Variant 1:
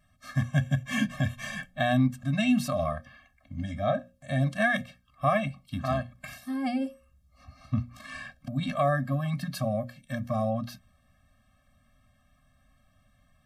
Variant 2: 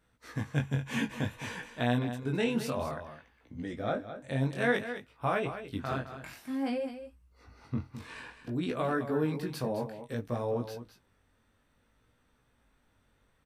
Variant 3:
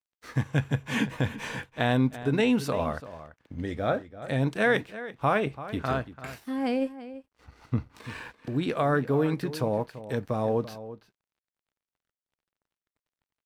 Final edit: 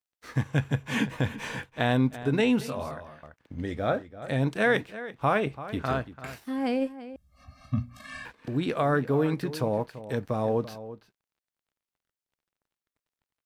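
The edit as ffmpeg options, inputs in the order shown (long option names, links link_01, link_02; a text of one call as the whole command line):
ffmpeg -i take0.wav -i take1.wav -i take2.wav -filter_complex "[2:a]asplit=3[link_01][link_02][link_03];[link_01]atrim=end=2.612[link_04];[1:a]atrim=start=2.608:end=3.232[link_05];[link_02]atrim=start=3.228:end=7.162[link_06];[0:a]atrim=start=7.158:end=8.252[link_07];[link_03]atrim=start=8.248[link_08];[link_04][link_05]acrossfade=duration=0.004:curve1=hsin:curve2=hsin[link_09];[link_09][link_06]acrossfade=duration=0.004:curve1=hsin:curve2=hsin[link_10];[link_10][link_07]acrossfade=duration=0.004:curve1=hsin:curve2=hsin[link_11];[link_11][link_08]acrossfade=duration=0.004:curve1=hsin:curve2=hsin" out.wav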